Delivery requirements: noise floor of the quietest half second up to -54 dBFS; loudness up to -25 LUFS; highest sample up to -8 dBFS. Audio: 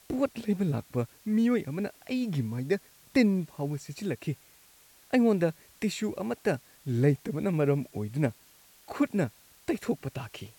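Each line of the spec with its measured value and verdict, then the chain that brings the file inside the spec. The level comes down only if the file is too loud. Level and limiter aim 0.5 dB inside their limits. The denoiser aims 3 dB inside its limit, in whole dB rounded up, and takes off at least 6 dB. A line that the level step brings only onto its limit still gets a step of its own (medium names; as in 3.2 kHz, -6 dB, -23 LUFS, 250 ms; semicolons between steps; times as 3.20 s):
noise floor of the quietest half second -58 dBFS: pass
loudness -30.0 LUFS: pass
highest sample -11.0 dBFS: pass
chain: none needed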